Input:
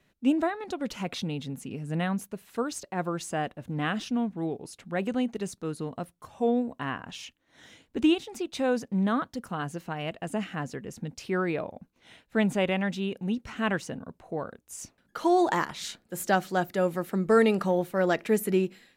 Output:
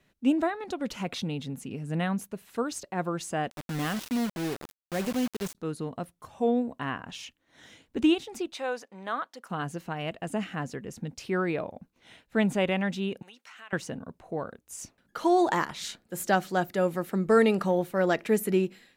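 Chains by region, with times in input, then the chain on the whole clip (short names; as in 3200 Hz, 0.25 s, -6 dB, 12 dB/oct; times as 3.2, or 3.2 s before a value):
3.5–5.55 bell 1700 Hz -4 dB 2.9 oct + requantised 6-bit, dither none
8.53–9.5 HPF 640 Hz + high shelf 4700 Hz -6 dB
13.22–13.73 HPF 1100 Hz + compressor 3:1, threshold -47 dBFS
whole clip: dry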